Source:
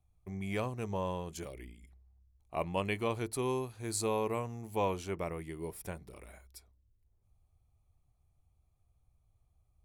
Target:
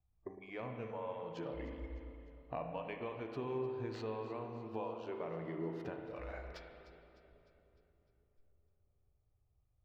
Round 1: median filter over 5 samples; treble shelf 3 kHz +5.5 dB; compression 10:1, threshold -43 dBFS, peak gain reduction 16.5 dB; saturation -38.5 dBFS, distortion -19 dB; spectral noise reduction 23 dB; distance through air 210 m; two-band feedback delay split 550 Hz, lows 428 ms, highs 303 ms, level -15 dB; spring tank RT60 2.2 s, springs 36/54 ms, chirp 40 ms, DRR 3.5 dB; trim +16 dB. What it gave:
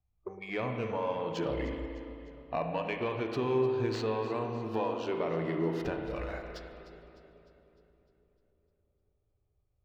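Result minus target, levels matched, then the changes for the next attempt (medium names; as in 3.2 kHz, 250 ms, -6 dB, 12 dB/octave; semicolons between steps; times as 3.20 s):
compression: peak gain reduction -10.5 dB; 4 kHz band +2.5 dB
change: treble shelf 3 kHz -3 dB; change: compression 10:1, threshold -55 dBFS, peak gain reduction 27 dB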